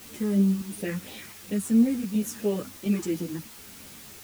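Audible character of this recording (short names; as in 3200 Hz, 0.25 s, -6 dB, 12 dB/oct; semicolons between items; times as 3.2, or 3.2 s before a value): phasing stages 4, 2.9 Hz, lowest notch 580–1400 Hz; chopped level 1.4 Hz, depth 60%, duty 85%; a quantiser's noise floor 8-bit, dither triangular; a shimmering, thickened sound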